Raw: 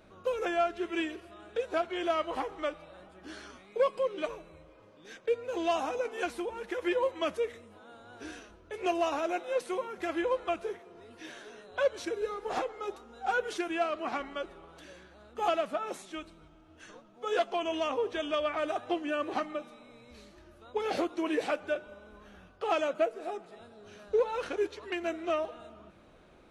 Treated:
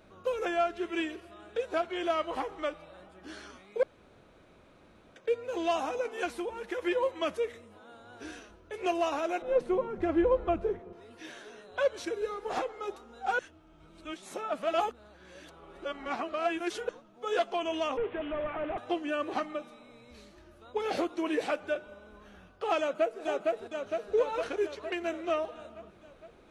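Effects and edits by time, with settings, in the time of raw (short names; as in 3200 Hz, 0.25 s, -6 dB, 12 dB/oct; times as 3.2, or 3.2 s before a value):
3.83–5.16 room tone
9.42–10.93 tilt -4.5 dB/oct
13.39–16.89 reverse
17.97–18.78 delta modulation 16 kbps, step -42.5 dBFS
22.79–23.21 echo throw 0.46 s, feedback 65%, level -1.5 dB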